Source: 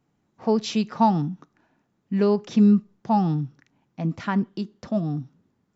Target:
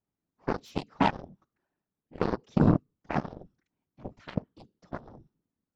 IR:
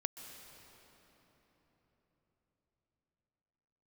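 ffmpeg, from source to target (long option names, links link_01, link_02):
-af "afftfilt=real='hypot(re,im)*cos(2*PI*random(0))':imag='hypot(re,im)*sin(2*PI*random(1))':win_size=512:overlap=0.75,aeval=exprs='0.299*(cos(1*acos(clip(val(0)/0.299,-1,1)))-cos(1*PI/2))+0.0531*(cos(7*acos(clip(val(0)/0.299,-1,1)))-cos(7*PI/2))':channel_layout=same"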